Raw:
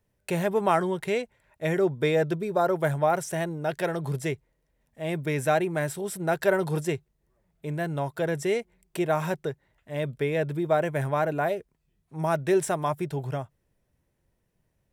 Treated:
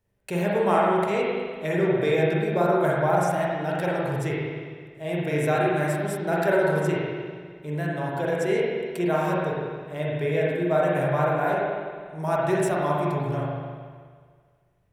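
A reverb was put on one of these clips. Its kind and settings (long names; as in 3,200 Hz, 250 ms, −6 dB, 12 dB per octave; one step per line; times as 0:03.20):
spring reverb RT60 1.8 s, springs 40/51 ms, chirp 65 ms, DRR −5 dB
level −3 dB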